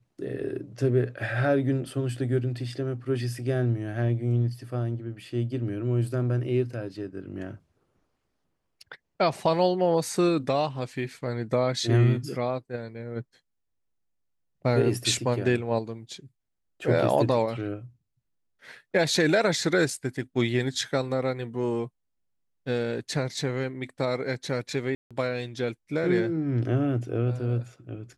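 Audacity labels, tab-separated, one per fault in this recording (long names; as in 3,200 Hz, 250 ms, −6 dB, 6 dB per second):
24.950000	25.110000	drop-out 156 ms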